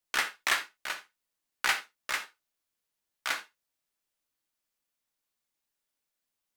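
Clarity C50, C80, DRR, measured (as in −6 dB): 13.0 dB, 20.5 dB, 7.5 dB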